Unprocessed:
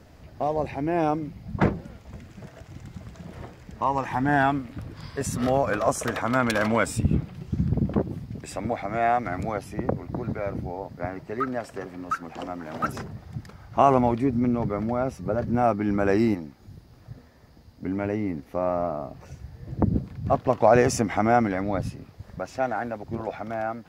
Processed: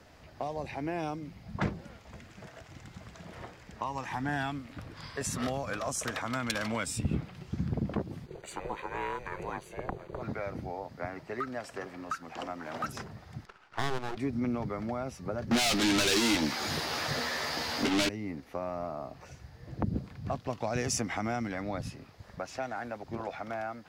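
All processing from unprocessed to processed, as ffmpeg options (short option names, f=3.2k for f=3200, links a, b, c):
-filter_complex "[0:a]asettb=1/sr,asplit=3[a][b][c];[a]atrim=end=8.264[d];[b]atrim=start=8.26:end=10.22,asetpts=PTS-STARTPTS,afade=t=in:d=0.004:c=qsin,afade=t=out:st=1.956:d=0.004:c=qsin,aeval=exprs='val(0)*sin(2*PI*260*n/s)':c=same,aeval=exprs='sgn(val(0))*max(abs(val(0))-0.00141,0)':c=same,asuperstop=centerf=5300:order=12:qfactor=5.6[e];[c]atrim=start=10.216[f];[d][e]acrossfade=d=0.004:c1=hsin:c2=qsin[g];[g][f]acrossfade=d=0.004:c1=qsin:c2=hsin,asettb=1/sr,asplit=3[h][i][j];[h]atrim=end=13.454[k];[i]atrim=start=13.45:end=14.17,asetpts=PTS-STARTPTS,afade=t=in:d=0.004:c=qsin,afade=t=out:st=0.716:d=0.004:c=qsin,agate=range=-33dB:threshold=-42dB:ratio=3:release=100:detection=peak,highpass=240,equalizer=f=250:t=q:w=4:g=-7,equalizer=f=390:t=q:w=4:g=10,equalizer=f=590:t=q:w=4:g=-4,equalizer=f=890:t=q:w=4:g=3,equalizer=f=1.4k:t=q:w=4:g=9,equalizer=f=2.6k:t=q:w=4:g=-8,lowpass=f=5.7k:w=0.5412,lowpass=f=5.7k:w=1.3066,aeval=exprs='max(val(0),0)':c=same[l];[j]atrim=start=14.166[m];[k][l]acrossfade=d=0.004:c1=hsin:c2=qsin[n];[n][m]acrossfade=d=0.004:c1=qsin:c2=hsin,asettb=1/sr,asplit=3[o][p][q];[o]atrim=end=15.514[r];[p]atrim=start=15.51:end=18.09,asetpts=PTS-STARTPTS,afade=t=in:d=0.004:c=qsin,afade=t=out:st=2.576:d=0.004:c=qsin,bass=f=250:g=-6,treble=f=4k:g=-3,asplit=2[s][t];[t]highpass=f=720:p=1,volume=40dB,asoftclip=type=tanh:threshold=-9dB[u];[s][u]amix=inputs=2:normalize=0,lowpass=f=7.9k:p=1,volume=-6dB,asplit=2[v][w];[w]adelay=13,volume=-6dB[x];[v][x]amix=inputs=2:normalize=0,atrim=end_sample=113778[y];[q]atrim=start=18.086[z];[r][y]acrossfade=d=0.004:c1=hsin:c2=qsin[aa];[aa][z]acrossfade=d=0.004:c1=qsin:c2=hsin,lowshelf=f=490:g=-10.5,acrossover=split=250|3000[ab][ac][ad];[ac]acompressor=threshold=-35dB:ratio=6[ae];[ab][ae][ad]amix=inputs=3:normalize=0,highshelf=f=10k:g=-9,volume=1.5dB"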